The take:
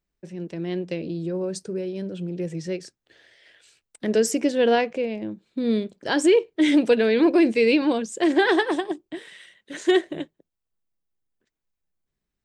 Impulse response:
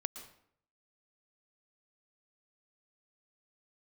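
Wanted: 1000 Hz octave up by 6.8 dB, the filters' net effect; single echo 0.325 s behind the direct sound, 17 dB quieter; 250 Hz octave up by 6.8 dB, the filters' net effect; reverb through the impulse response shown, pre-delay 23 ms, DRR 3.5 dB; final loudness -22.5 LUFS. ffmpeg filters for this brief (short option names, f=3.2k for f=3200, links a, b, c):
-filter_complex "[0:a]equalizer=f=250:t=o:g=8.5,equalizer=f=1k:t=o:g=9,aecho=1:1:325:0.141,asplit=2[a][b];[1:a]atrim=start_sample=2205,adelay=23[c];[b][c]afir=irnorm=-1:irlink=0,volume=-3dB[d];[a][d]amix=inputs=2:normalize=0,volume=-7dB"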